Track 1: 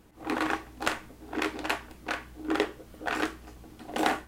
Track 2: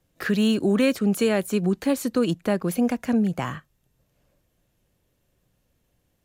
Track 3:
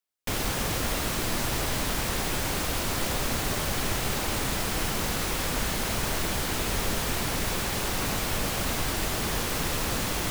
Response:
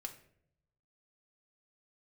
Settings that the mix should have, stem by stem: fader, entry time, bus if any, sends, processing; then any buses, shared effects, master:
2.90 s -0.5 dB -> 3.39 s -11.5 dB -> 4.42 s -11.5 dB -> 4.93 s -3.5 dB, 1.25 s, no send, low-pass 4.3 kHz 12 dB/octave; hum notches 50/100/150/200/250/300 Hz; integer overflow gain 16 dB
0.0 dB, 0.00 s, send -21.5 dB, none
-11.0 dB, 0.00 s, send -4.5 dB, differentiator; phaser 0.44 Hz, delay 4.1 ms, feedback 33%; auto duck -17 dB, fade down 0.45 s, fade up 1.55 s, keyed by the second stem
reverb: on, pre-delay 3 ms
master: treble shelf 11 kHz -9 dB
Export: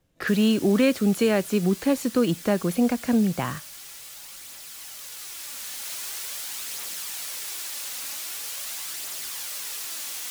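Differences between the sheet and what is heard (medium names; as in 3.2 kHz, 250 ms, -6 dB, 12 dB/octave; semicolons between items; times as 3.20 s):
stem 1: muted; stem 3 -11.0 dB -> -0.5 dB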